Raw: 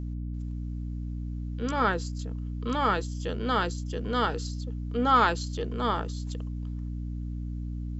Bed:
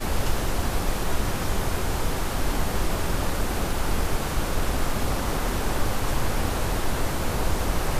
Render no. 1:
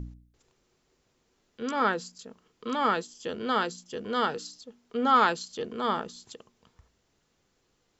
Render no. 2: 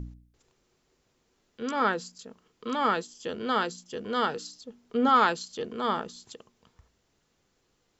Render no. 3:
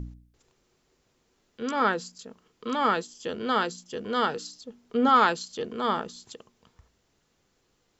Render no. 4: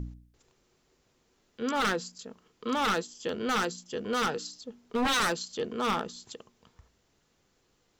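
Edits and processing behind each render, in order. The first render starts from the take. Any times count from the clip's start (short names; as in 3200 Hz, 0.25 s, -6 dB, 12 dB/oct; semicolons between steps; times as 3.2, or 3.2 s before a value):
de-hum 60 Hz, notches 5
4.64–5.09 low shelf 430 Hz +5.5 dB
gain +1.5 dB
wavefolder -21.5 dBFS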